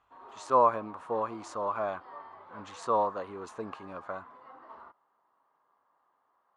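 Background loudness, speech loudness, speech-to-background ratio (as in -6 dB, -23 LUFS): -49.5 LUFS, -31.0 LUFS, 18.5 dB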